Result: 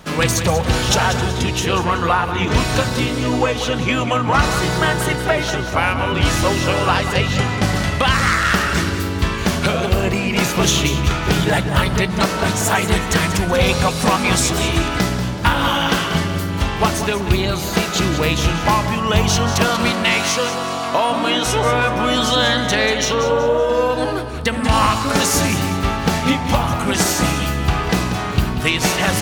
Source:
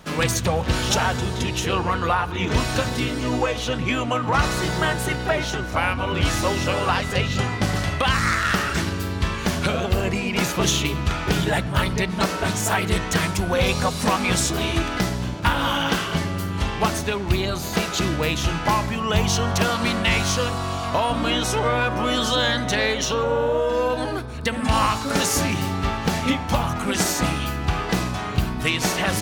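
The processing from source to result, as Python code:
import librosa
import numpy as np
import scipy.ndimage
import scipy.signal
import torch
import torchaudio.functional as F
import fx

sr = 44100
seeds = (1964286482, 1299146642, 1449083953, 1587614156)

y = fx.highpass(x, sr, hz=220.0, slope=12, at=(19.91, 21.46))
y = fx.echo_feedback(y, sr, ms=188, feedback_pct=37, wet_db=-10.5)
y = y * 10.0 ** (4.5 / 20.0)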